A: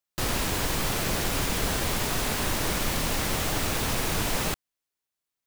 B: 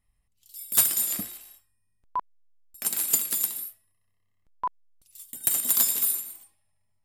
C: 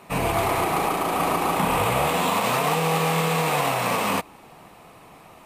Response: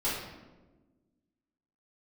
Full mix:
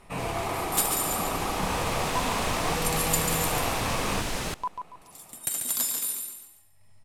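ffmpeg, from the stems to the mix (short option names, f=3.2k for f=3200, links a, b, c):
-filter_complex "[0:a]dynaudnorm=f=600:g=5:m=11.5dB,volume=-13dB,asplit=2[a][b];[b]volume=-23dB[c];[1:a]acompressor=mode=upward:threshold=-36dB:ratio=2.5,volume=-2.5dB,asplit=2[d][e];[e]volume=-6dB[f];[2:a]volume=-8dB[g];[c][f]amix=inputs=2:normalize=0,aecho=0:1:141|282|423|564:1|0.3|0.09|0.027[h];[a][d][g][h]amix=inputs=4:normalize=0,agate=range=-7dB:threshold=-57dB:ratio=16:detection=peak,lowpass=11k"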